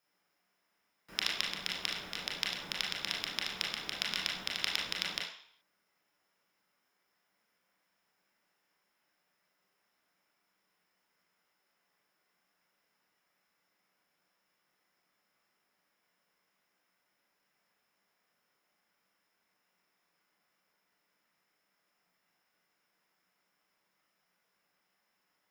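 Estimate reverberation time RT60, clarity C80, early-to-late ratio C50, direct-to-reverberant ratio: 0.60 s, 7.0 dB, 3.0 dB, −3.5 dB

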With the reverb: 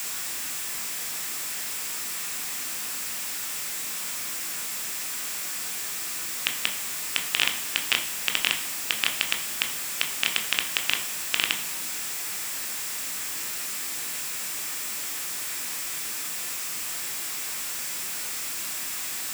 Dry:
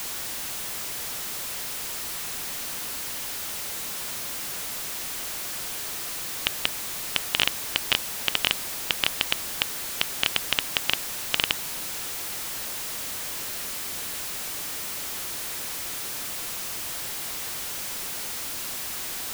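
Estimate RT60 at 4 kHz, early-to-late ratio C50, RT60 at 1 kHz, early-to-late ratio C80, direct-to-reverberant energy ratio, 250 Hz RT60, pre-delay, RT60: 0.90 s, 10.5 dB, 1.0 s, 13.0 dB, 4.0 dB, 0.85 s, 16 ms, 1.0 s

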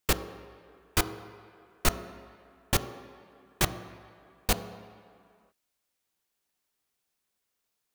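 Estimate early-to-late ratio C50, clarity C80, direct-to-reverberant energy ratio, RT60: 11.5 dB, 12.5 dB, 9.0 dB, non-exponential decay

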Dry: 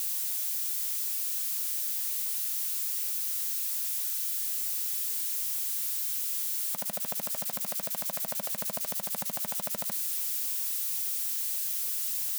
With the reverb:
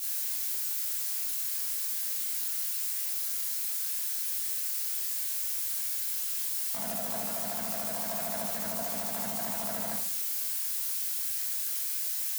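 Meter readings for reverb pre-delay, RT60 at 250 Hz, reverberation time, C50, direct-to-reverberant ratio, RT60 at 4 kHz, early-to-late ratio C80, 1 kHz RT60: 14 ms, 0.60 s, 0.55 s, 3.0 dB, −8.5 dB, 0.35 s, 7.5 dB, 0.55 s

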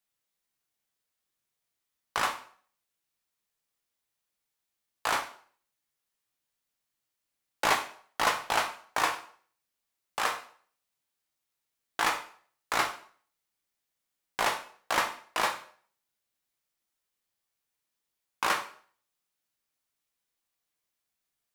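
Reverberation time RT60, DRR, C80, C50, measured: 0.50 s, 3.0 dB, 14.5 dB, 10.5 dB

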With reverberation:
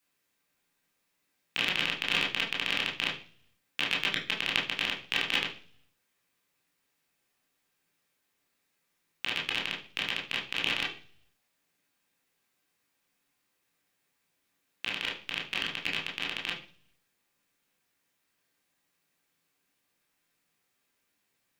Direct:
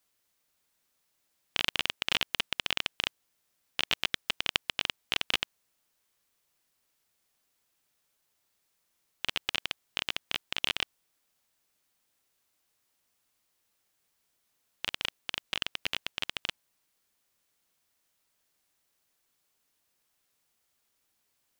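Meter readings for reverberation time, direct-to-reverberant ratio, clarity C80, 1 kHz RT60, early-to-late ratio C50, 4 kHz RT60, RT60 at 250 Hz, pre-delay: 0.45 s, −3.0 dB, 13.5 dB, 0.40 s, 8.5 dB, 0.60 s, 0.70 s, 17 ms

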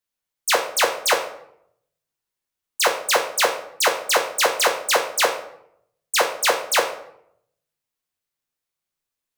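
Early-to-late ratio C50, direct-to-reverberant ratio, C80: 8.5 dB, 2.0 dB, 12.0 dB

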